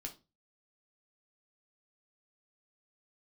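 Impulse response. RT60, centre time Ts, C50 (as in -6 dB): 0.30 s, 10 ms, 14.0 dB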